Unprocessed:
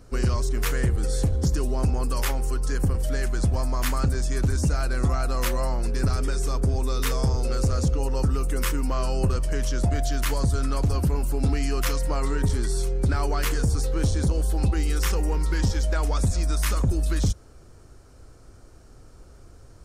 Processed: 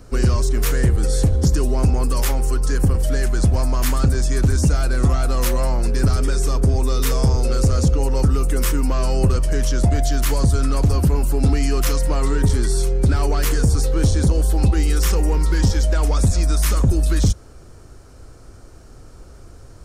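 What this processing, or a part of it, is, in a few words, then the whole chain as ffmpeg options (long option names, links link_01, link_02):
one-band saturation: -filter_complex "[0:a]acrossover=split=550|4500[link_01][link_02][link_03];[link_02]asoftclip=type=tanh:threshold=-33.5dB[link_04];[link_01][link_04][link_03]amix=inputs=3:normalize=0,volume=6.5dB"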